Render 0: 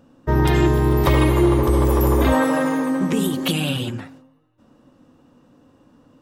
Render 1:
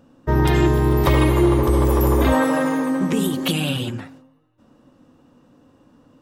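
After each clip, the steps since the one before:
no processing that can be heard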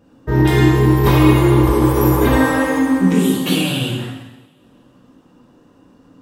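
coupled-rooms reverb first 0.95 s, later 2.5 s, from −24 dB, DRR −6.5 dB
level −3 dB

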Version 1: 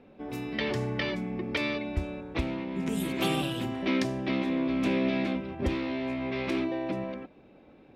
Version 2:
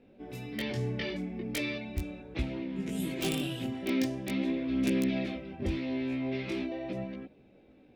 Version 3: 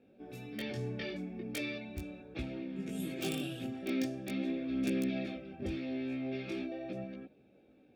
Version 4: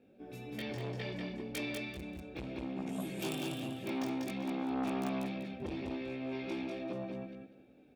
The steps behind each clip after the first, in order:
wrap-around overflow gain 17.5 dB; parametric band 1,100 Hz −9 dB 1 octave; multi-voice chorus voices 2, 0.41 Hz, delay 19 ms, depth 4.5 ms
notch comb filter 1,000 Hz; level −4 dB
repeating echo 194 ms, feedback 24%, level −4 dB; saturating transformer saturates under 780 Hz

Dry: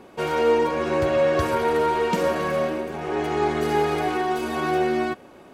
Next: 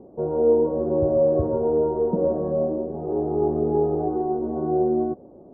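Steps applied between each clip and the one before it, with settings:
inverse Chebyshev low-pass filter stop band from 2,900 Hz, stop band 70 dB
level +2 dB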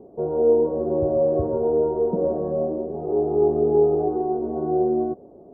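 hollow resonant body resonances 420/680 Hz, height 7 dB
level −2 dB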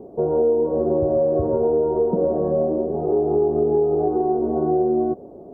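downward compressor, threshold −22 dBFS, peak gain reduction 8.5 dB
level +6 dB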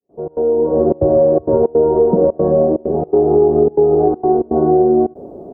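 fade in at the beginning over 0.80 s
gate pattern ".xx.xxxxxx.xxxx" 163 BPM −24 dB
level +7.5 dB

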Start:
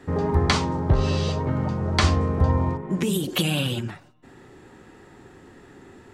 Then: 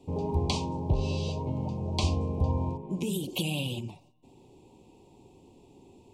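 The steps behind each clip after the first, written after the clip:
Chebyshev band-stop filter 980–2,500 Hz, order 3
level −7 dB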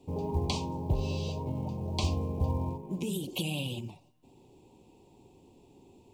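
log-companded quantiser 8 bits
level −2.5 dB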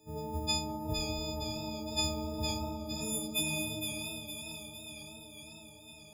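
every partial snapped to a pitch grid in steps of 6 semitones
echo with a time of its own for lows and highs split 1,500 Hz, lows 196 ms, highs 461 ms, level −5.5 dB
feedback echo with a swinging delay time 503 ms, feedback 73%, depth 83 cents, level −12 dB
level −6.5 dB

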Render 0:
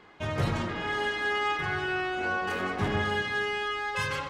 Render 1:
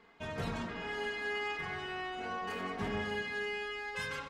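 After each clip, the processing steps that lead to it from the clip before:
comb filter 4.4 ms, depth 56%
level −8.5 dB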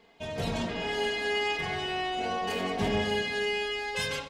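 drawn EQ curve 370 Hz 0 dB, 660 Hz +4 dB, 1,300 Hz −8 dB, 3,100 Hz +4 dB
automatic gain control gain up to 6 dB
level +2 dB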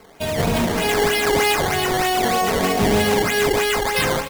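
in parallel at +1.5 dB: brickwall limiter −24 dBFS, peak gain reduction 6.5 dB
on the sum: sample-and-hold swept by an LFO 12×, swing 100% 3.2 Hz
level +6 dB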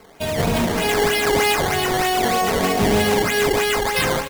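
single-tap delay 861 ms −21.5 dB

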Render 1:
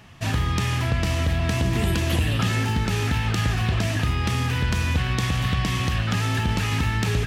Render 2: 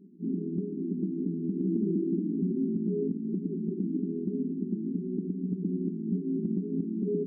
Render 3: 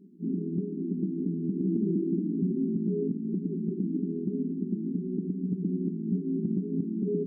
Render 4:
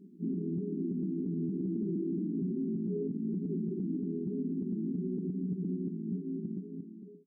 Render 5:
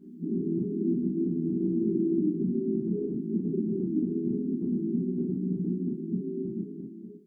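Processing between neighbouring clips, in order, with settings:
brick-wall band-pass 170–430 Hz; brickwall limiter −23 dBFS, peak gain reduction 6 dB; level +3 dB
dynamic equaliser 140 Hz, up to +8 dB, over −51 dBFS, Q 3.8
fade-out on the ending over 2.12 s; brickwall limiter −27 dBFS, peak gain reduction 8.5 dB
convolution reverb, pre-delay 3 ms, DRR −5 dB

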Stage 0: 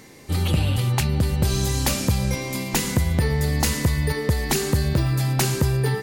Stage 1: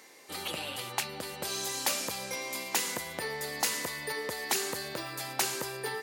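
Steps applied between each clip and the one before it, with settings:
high-pass filter 530 Hz 12 dB per octave
level −5 dB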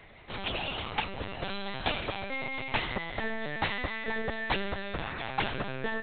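linear-prediction vocoder at 8 kHz pitch kept
level +4 dB

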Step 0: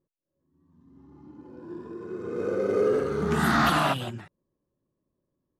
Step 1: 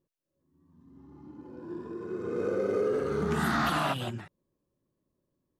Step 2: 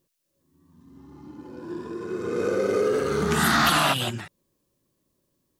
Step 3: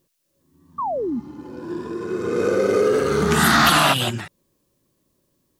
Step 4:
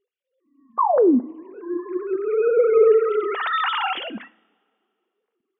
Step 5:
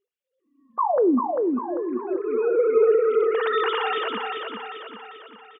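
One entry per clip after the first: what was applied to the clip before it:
downward compressor 3 to 1, threshold −26 dBFS, peak gain reduction 6 dB
high-shelf EQ 2,100 Hz +11.5 dB; level +4.5 dB
sound drawn into the spectrogram fall, 0:00.78–0:01.20, 210–1,200 Hz −29 dBFS; level +5 dB
three sine waves on the formant tracks; coupled-rooms reverb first 0.52 s, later 2.2 s, from −21 dB, DRR 16 dB
repeating echo 395 ms, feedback 51%, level −4 dB; level −3.5 dB

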